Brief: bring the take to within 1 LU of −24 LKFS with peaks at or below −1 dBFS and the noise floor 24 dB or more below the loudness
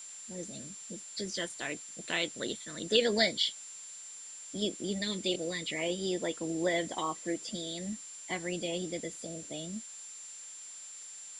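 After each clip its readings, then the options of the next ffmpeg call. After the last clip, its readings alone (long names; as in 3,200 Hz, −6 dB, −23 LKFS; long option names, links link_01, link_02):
interfering tone 7,300 Hz; level of the tone −45 dBFS; background noise floor −47 dBFS; target noise floor −59 dBFS; integrated loudness −34.5 LKFS; sample peak −12.5 dBFS; target loudness −24.0 LKFS
→ -af "bandreject=frequency=7300:width=30"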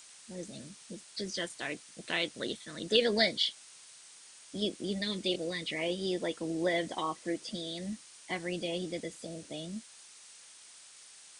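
interfering tone none found; background noise floor −55 dBFS; target noise floor −58 dBFS
→ -af "afftdn=noise_reduction=6:noise_floor=-55"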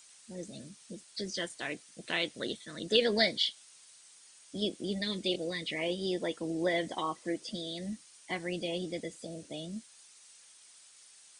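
background noise floor −58 dBFS; integrated loudness −34.0 LKFS; sample peak −12.5 dBFS; target loudness −24.0 LKFS
→ -af "volume=10dB"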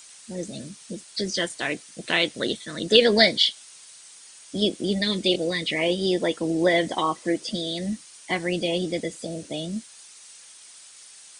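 integrated loudness −24.0 LKFS; sample peak −2.5 dBFS; background noise floor −48 dBFS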